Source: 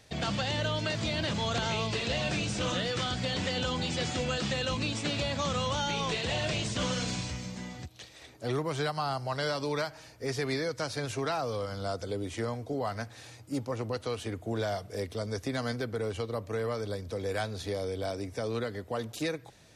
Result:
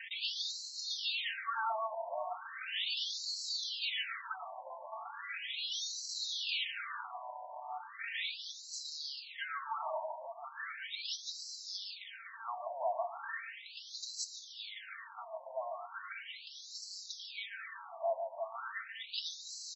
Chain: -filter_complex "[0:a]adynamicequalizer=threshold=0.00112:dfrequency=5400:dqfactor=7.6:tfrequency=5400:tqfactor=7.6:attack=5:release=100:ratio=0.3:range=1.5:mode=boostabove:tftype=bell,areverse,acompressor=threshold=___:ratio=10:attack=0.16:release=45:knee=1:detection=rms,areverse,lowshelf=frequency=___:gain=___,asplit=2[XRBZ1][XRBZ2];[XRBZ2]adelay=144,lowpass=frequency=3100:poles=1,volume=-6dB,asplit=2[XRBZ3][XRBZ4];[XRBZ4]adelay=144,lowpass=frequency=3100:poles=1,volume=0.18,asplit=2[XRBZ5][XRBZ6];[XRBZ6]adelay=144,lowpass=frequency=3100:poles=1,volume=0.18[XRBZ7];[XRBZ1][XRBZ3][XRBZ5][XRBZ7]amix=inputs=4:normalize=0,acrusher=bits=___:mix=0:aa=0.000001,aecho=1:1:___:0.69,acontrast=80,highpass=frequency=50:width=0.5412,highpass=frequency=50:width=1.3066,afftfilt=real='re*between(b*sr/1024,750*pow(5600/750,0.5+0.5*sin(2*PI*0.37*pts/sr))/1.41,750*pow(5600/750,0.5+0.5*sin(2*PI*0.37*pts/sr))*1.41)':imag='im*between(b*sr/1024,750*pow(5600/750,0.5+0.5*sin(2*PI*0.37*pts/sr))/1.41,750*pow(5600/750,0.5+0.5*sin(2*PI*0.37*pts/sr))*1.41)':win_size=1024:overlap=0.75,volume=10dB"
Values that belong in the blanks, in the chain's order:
-44dB, 350, -5.5, 9, 4.4